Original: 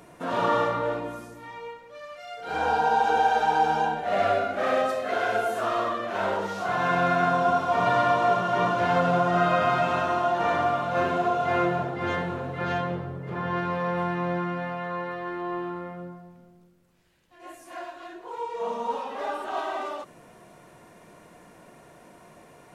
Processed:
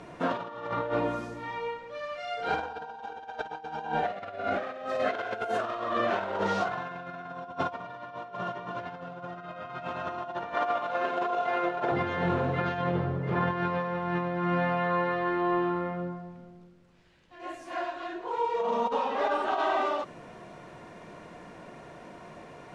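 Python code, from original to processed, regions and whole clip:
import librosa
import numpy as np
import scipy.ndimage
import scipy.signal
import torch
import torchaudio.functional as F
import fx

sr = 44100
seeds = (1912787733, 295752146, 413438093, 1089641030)

y = fx.chain(x, sr, fx.highpass(hz=370.0, slope=12),
    fx.over_compress(threshold_db=-28.0, ratio=-0.5), at=(10.54, 11.92))
y = scipy.signal.sosfilt(scipy.signal.butter(2, 5000.0, 'lowpass', fs=sr, output='sos'), y)
y = fx.over_compress(y, sr, threshold_db=-30.0, ratio=-0.5)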